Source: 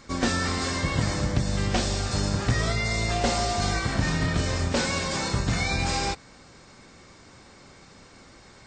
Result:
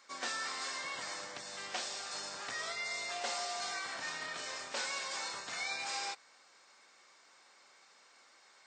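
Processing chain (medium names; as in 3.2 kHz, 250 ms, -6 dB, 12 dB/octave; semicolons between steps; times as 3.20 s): high-pass 780 Hz 12 dB/octave; trim -9 dB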